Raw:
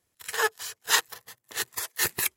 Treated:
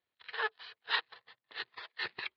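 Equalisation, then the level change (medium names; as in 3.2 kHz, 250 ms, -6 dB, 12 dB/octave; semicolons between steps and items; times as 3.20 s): steep low-pass 4.4 kHz 72 dB/octave; bass shelf 68 Hz -11 dB; bass shelf 400 Hz -10 dB; -7.0 dB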